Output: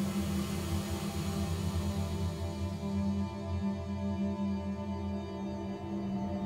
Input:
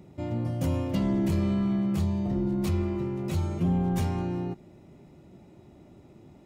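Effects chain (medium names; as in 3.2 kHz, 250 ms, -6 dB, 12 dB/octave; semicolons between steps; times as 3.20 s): bass shelf 390 Hz -9.5 dB; Paulstretch 21×, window 0.25 s, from 1.95 s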